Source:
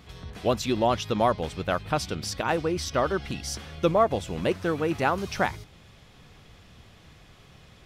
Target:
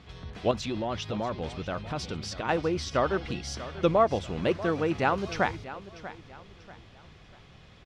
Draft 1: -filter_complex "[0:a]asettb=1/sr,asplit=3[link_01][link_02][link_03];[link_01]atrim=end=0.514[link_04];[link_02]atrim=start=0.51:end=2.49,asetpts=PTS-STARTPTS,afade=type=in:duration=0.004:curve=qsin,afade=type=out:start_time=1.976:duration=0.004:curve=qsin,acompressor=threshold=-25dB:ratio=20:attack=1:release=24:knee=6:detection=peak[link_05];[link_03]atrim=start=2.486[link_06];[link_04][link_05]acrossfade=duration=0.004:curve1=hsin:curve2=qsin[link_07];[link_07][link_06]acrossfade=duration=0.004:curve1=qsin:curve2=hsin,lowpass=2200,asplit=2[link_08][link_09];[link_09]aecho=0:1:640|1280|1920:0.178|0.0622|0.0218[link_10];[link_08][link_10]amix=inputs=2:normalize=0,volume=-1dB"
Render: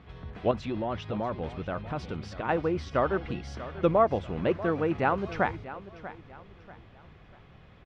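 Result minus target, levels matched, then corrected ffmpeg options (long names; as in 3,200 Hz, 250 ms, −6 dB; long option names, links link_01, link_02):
4,000 Hz band −8.0 dB
-filter_complex "[0:a]asettb=1/sr,asplit=3[link_01][link_02][link_03];[link_01]atrim=end=0.514[link_04];[link_02]atrim=start=0.51:end=2.49,asetpts=PTS-STARTPTS,afade=type=in:duration=0.004:curve=qsin,afade=type=out:start_time=1.976:duration=0.004:curve=qsin,acompressor=threshold=-25dB:ratio=20:attack=1:release=24:knee=6:detection=peak[link_05];[link_03]atrim=start=2.486[link_06];[link_04][link_05]acrossfade=duration=0.004:curve1=hsin:curve2=qsin[link_07];[link_07][link_06]acrossfade=duration=0.004:curve1=qsin:curve2=hsin,lowpass=5400,asplit=2[link_08][link_09];[link_09]aecho=0:1:640|1280|1920:0.178|0.0622|0.0218[link_10];[link_08][link_10]amix=inputs=2:normalize=0,volume=-1dB"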